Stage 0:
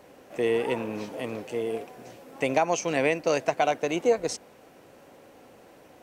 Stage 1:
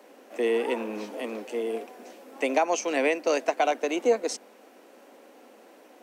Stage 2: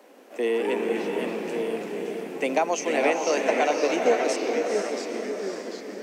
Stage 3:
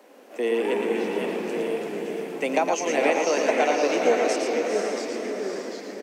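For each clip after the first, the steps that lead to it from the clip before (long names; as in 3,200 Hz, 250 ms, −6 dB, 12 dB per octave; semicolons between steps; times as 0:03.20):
Butterworth high-pass 210 Hz 72 dB per octave
feedback delay with all-pass diffusion 475 ms, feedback 43%, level −4 dB; delay with pitch and tempo change per echo 155 ms, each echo −2 semitones, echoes 3, each echo −6 dB
single-tap delay 113 ms −5.5 dB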